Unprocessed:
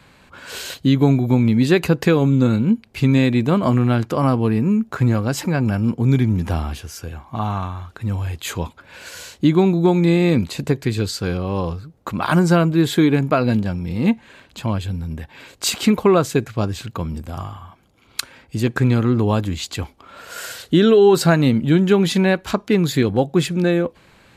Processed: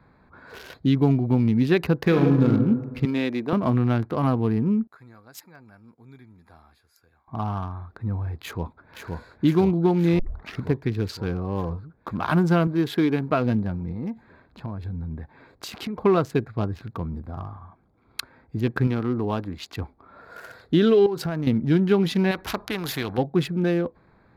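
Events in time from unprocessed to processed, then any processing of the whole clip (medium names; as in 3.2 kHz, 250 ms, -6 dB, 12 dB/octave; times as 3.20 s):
2.00–2.49 s: reverb throw, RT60 1.5 s, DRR 1.5 dB
3.05–3.53 s: high-pass 300 Hz
4.87–7.28 s: pre-emphasis filter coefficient 0.97
8.39–9.12 s: echo throw 520 ms, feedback 75%, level -3 dB
10.19 s: tape start 0.47 s
12.67–13.31 s: high-pass 200 Hz 6 dB/octave
13.91–16.05 s: compression 8:1, threshold -22 dBFS
18.87–19.77 s: bass shelf 150 Hz -10.5 dB
21.06–21.47 s: compression 16:1, threshold -18 dBFS
22.31–23.18 s: spectrum-flattening compressor 2:1
whole clip: local Wiener filter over 15 samples; peaking EQ 7.6 kHz -11 dB 0.57 oct; band-stop 550 Hz, Q 12; trim -4.5 dB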